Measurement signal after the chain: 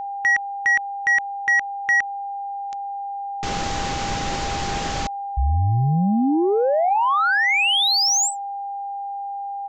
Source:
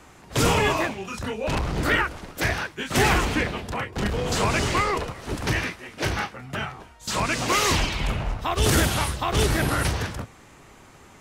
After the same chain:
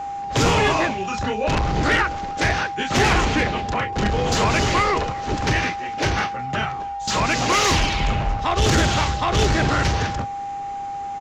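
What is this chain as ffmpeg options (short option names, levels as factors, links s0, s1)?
-af "aresample=16000,aresample=44100,asoftclip=type=tanh:threshold=0.133,aeval=exprs='val(0)+0.0251*sin(2*PI*800*n/s)':c=same,volume=1.88"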